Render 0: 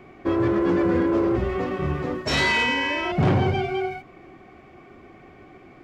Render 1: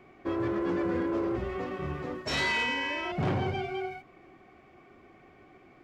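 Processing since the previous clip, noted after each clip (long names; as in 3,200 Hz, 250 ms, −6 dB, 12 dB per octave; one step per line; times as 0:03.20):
low-shelf EQ 340 Hz −3.5 dB
level −7 dB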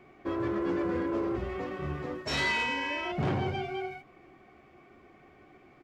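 double-tracking delay 14 ms −12 dB
level −1 dB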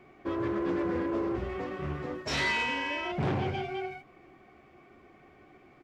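highs frequency-modulated by the lows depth 0.26 ms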